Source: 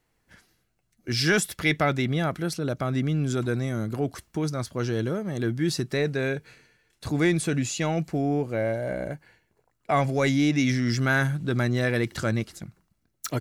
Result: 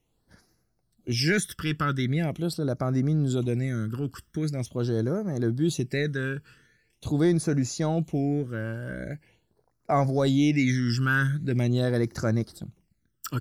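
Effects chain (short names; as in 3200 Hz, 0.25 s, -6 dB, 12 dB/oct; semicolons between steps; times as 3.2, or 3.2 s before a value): phaser stages 12, 0.43 Hz, lowest notch 670–3100 Hz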